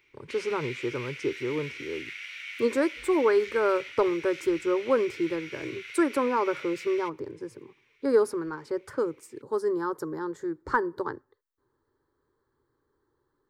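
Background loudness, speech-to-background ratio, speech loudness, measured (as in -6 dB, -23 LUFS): -39.5 LUFS, 11.0 dB, -28.5 LUFS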